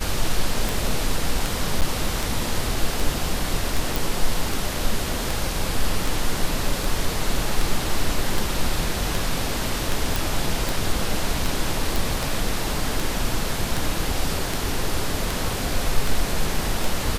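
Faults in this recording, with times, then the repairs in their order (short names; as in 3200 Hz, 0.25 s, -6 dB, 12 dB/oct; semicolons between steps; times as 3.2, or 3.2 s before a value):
tick 78 rpm
1.81–1.82 gap 8.5 ms
3.96 pop
10.16 pop
11.96 pop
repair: de-click; interpolate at 1.81, 8.5 ms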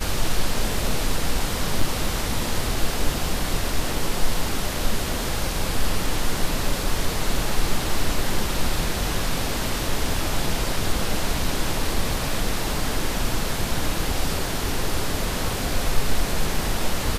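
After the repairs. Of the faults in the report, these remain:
none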